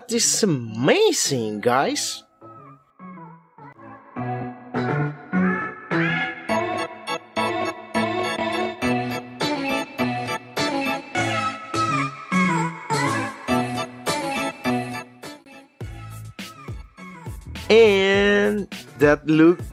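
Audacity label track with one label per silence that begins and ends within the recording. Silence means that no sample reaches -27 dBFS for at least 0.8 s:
2.170000	4.170000	silence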